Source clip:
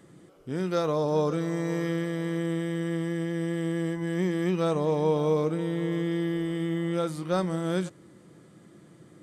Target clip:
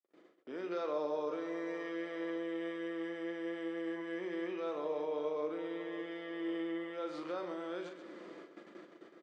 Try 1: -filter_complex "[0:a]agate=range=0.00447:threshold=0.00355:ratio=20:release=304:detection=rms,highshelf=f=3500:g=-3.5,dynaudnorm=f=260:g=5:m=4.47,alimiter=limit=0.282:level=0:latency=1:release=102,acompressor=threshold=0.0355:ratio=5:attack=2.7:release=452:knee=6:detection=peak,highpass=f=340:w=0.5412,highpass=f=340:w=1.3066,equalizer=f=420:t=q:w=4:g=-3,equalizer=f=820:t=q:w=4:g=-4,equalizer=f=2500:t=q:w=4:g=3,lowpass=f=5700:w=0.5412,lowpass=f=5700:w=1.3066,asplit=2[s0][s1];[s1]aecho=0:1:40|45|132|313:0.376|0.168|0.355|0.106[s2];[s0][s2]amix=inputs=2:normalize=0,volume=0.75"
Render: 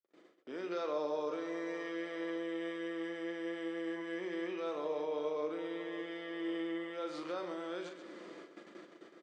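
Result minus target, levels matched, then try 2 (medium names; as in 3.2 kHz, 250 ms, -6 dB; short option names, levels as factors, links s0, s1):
8 kHz band +5.0 dB
-filter_complex "[0:a]agate=range=0.00447:threshold=0.00355:ratio=20:release=304:detection=rms,highshelf=f=3500:g=-10.5,dynaudnorm=f=260:g=5:m=4.47,alimiter=limit=0.282:level=0:latency=1:release=102,acompressor=threshold=0.0355:ratio=5:attack=2.7:release=452:knee=6:detection=peak,highpass=f=340:w=0.5412,highpass=f=340:w=1.3066,equalizer=f=420:t=q:w=4:g=-3,equalizer=f=820:t=q:w=4:g=-4,equalizer=f=2500:t=q:w=4:g=3,lowpass=f=5700:w=0.5412,lowpass=f=5700:w=1.3066,asplit=2[s0][s1];[s1]aecho=0:1:40|45|132|313:0.376|0.168|0.355|0.106[s2];[s0][s2]amix=inputs=2:normalize=0,volume=0.75"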